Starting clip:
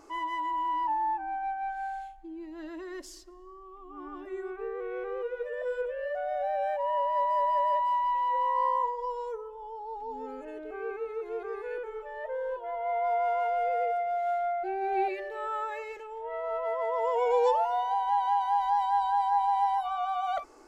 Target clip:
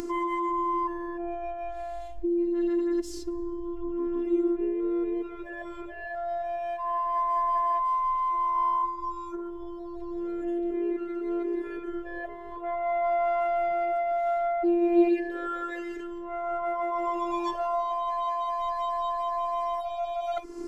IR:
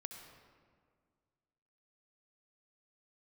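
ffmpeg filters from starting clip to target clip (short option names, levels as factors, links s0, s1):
-af "lowshelf=f=450:t=q:w=1.5:g=9.5,acompressor=mode=upward:threshold=0.0355:ratio=2.5,afftfilt=real='hypot(re,im)*cos(PI*b)':imag='0':win_size=512:overlap=0.75,volume=1.68"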